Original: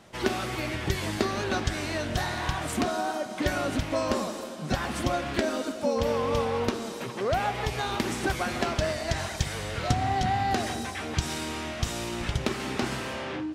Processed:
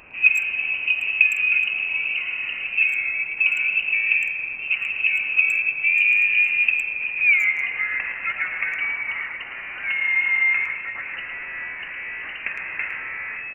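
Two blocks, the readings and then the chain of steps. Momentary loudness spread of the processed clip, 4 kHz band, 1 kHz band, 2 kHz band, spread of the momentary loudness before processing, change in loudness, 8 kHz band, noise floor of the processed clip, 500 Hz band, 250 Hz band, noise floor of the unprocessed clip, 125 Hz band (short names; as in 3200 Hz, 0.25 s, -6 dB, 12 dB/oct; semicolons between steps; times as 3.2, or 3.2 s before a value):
14 LU, -1.5 dB, -12.0 dB, +16.5 dB, 5 LU, +9.0 dB, under -10 dB, -34 dBFS, under -20 dB, under -20 dB, -37 dBFS, under -20 dB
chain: tilt shelf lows +6.5 dB, about 1200 Hz; band-pass sweep 380 Hz -> 990 Hz, 6.92–7.89; added noise blue -43 dBFS; inverted band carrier 2900 Hz; speakerphone echo 0.11 s, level -7 dB; gain +8 dB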